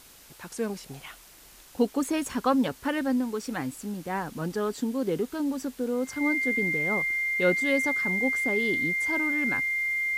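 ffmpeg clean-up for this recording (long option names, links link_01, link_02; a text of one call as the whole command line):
ffmpeg -i in.wav -af "bandreject=frequency=2100:width=30,afwtdn=0.0028" out.wav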